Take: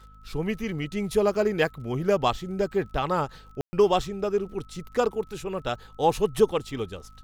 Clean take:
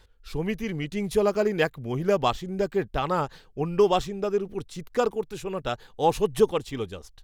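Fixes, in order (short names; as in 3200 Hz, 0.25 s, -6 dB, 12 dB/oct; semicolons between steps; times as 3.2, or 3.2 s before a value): de-click; de-hum 51.6 Hz, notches 5; notch 1300 Hz, Q 30; room tone fill 3.61–3.73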